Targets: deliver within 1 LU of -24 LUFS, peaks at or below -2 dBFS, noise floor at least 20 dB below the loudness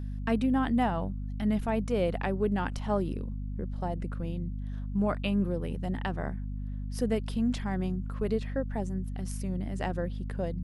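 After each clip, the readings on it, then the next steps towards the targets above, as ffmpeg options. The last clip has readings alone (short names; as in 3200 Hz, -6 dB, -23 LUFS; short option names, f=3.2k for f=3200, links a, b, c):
hum 50 Hz; harmonics up to 250 Hz; hum level -32 dBFS; loudness -31.5 LUFS; peak -15.0 dBFS; loudness target -24.0 LUFS
-> -af "bandreject=f=50:t=h:w=4,bandreject=f=100:t=h:w=4,bandreject=f=150:t=h:w=4,bandreject=f=200:t=h:w=4,bandreject=f=250:t=h:w=4"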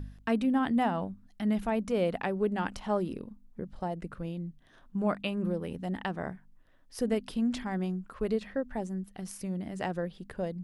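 hum none; loudness -32.5 LUFS; peak -16.5 dBFS; loudness target -24.0 LUFS
-> -af "volume=8.5dB"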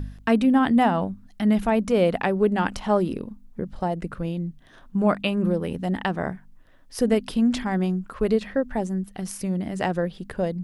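loudness -24.0 LUFS; peak -8.0 dBFS; noise floor -50 dBFS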